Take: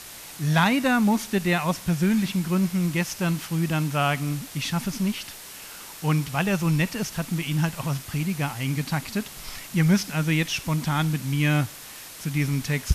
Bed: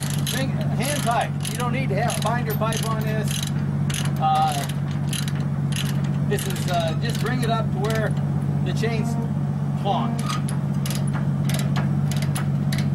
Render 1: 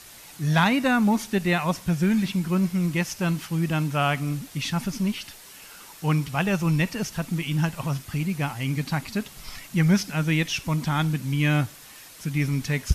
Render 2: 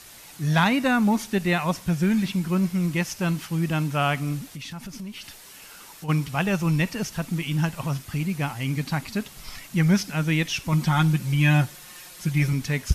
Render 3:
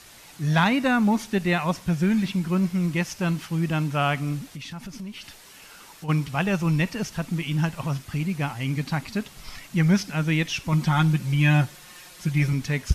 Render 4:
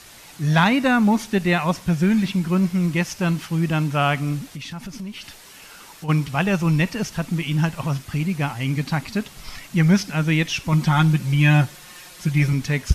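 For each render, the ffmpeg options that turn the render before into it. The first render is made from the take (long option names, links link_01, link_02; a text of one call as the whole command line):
ffmpeg -i in.wav -af "afftdn=noise_reduction=6:noise_floor=-42" out.wav
ffmpeg -i in.wav -filter_complex "[0:a]asplit=3[link_01][link_02][link_03];[link_01]afade=type=out:start_time=4.54:duration=0.02[link_04];[link_02]acompressor=threshold=-34dB:ratio=5:attack=3.2:release=140:knee=1:detection=peak,afade=type=in:start_time=4.54:duration=0.02,afade=type=out:start_time=6.08:duration=0.02[link_05];[link_03]afade=type=in:start_time=6.08:duration=0.02[link_06];[link_04][link_05][link_06]amix=inputs=3:normalize=0,asettb=1/sr,asplit=3[link_07][link_08][link_09];[link_07]atrim=end=10.724[link_10];[link_08]atrim=start=10.72:end=12.53,asetpts=PTS-STARTPTS,afade=type=in:duration=0.004:curve=qsin,afade=type=out:start_time=1.806:duration=0.004:curve=qsin,aecho=1:1:5.6:0.79,atrim=end_sample=79821[link_11];[link_09]atrim=start=12.526[link_12];[link_10][link_11]acrossfade=duration=0.004:curve1=hsin:curve2=qsin[link_13];[link_13][link_12]acrossfade=duration=0.004:curve1=qsin:curve2=hsin" out.wav
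ffmpeg -i in.wav -af "highshelf=frequency=8800:gain=-7.5" out.wav
ffmpeg -i in.wav -af "volume=3.5dB" out.wav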